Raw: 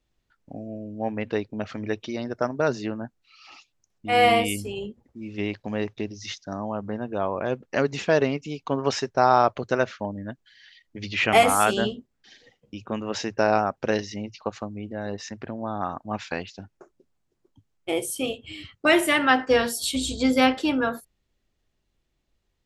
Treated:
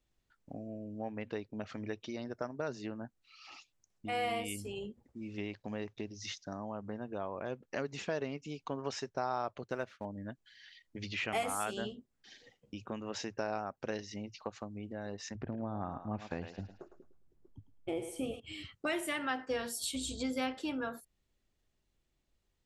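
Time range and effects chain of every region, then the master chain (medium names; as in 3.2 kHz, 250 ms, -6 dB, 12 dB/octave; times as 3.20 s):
9.64–10.05 s: companding laws mixed up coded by A + treble shelf 7.8 kHz -10 dB
15.35–18.40 s: tilt EQ -3 dB/octave + thinning echo 107 ms, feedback 33%, high-pass 520 Hz, level -8 dB
whole clip: compression 2:1, threshold -36 dBFS; peaking EQ 8.2 kHz +3.5 dB 0.71 oct; trim -5 dB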